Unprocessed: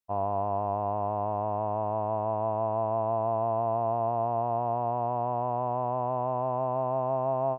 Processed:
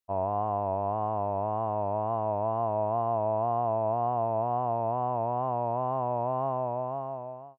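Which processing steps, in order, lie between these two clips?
fade-out on the ending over 1.13 s
tape wow and flutter 81 cents

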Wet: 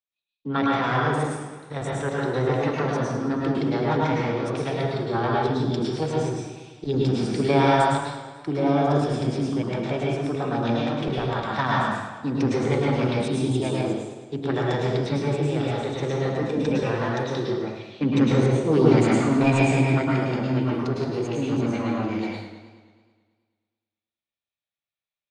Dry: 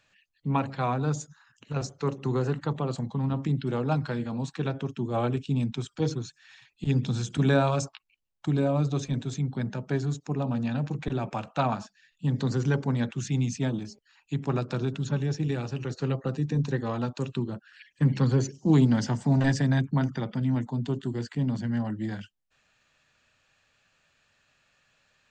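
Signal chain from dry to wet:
formants moved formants +6 semitones
bass and treble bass −3 dB, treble −10 dB
downward expander −50 dBFS
parametric band 3,700 Hz +5.5 dB 0.75 octaves
transient designer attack 0 dB, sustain +5 dB
dense smooth reverb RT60 0.8 s, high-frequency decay 0.85×, pre-delay 95 ms, DRR −3.5 dB
feedback echo with a swinging delay time 108 ms, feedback 64%, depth 84 cents, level −12.5 dB

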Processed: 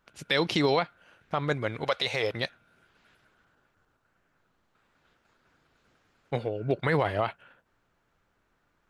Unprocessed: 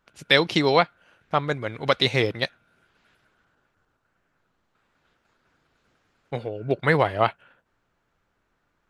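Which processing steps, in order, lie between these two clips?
brickwall limiter −14 dBFS, peak gain reduction 10.5 dB
0:01.84–0:02.33: low shelf with overshoot 410 Hz −9 dB, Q 1.5

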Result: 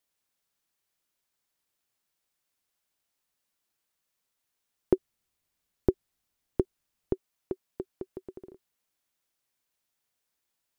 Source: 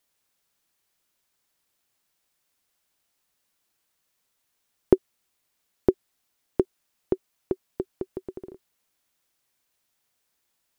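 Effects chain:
0:04.93–0:07.13: low-shelf EQ 160 Hz +11.5 dB
level −6.5 dB

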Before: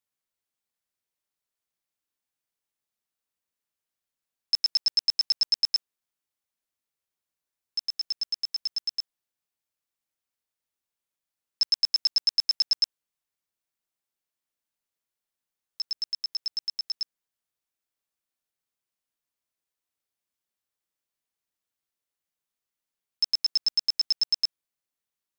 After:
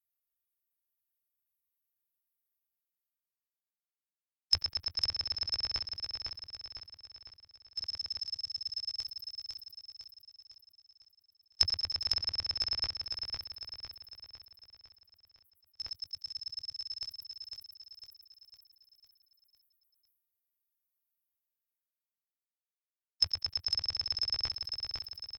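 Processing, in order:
spectral dynamics exaggerated over time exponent 3
transient designer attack +8 dB, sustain −9 dB
treble cut that deepens with the level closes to 2,300 Hz, closed at −19.5 dBFS
reversed playback
upward compression, threshold −38 dBFS
reversed playback
low shelf with overshoot 130 Hz +12.5 dB, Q 1.5
on a send: repeating echo 504 ms, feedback 49%, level −5 dB
on the sum: level that may fall only so fast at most 70 dB per second

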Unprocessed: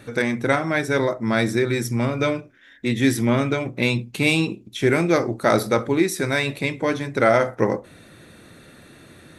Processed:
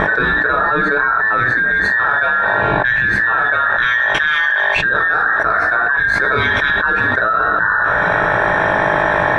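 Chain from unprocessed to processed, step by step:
frequency inversion band by band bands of 2,000 Hz
hum with harmonics 50 Hz, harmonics 23, −49 dBFS −1 dB per octave
mains-hum notches 50/100/150/200/250/300/350 Hz
convolution reverb, pre-delay 3 ms, DRR 2 dB
dynamic equaliser 1,300 Hz, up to +5 dB, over −33 dBFS, Q 3.4
low-pass filter 1,700 Hz 12 dB per octave
envelope flattener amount 100%
level −7 dB

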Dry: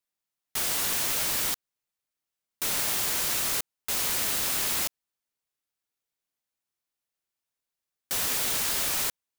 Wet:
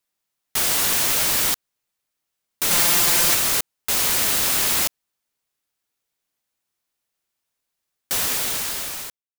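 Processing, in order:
fade-out on the ending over 1.47 s
0:02.70–0:03.35: comb filter 5.8 ms, depth 94%
level +7.5 dB

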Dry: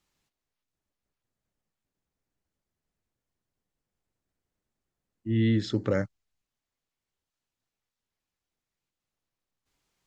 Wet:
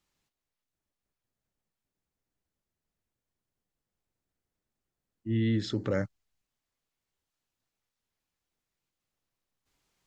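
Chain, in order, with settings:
speech leveller 0.5 s
brickwall limiter −20 dBFS, peak gain reduction 5.5 dB

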